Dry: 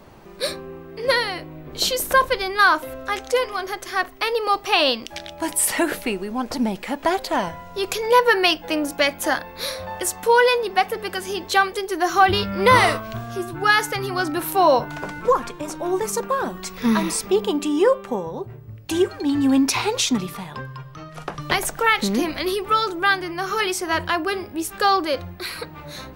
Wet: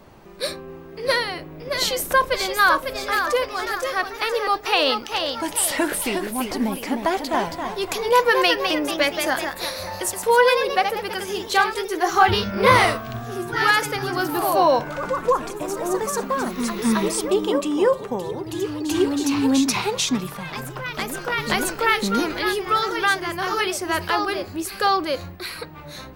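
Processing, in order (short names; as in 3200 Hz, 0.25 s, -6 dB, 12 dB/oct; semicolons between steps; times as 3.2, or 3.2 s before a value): echoes that change speed 0.681 s, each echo +1 st, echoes 3, each echo -6 dB; gain -1.5 dB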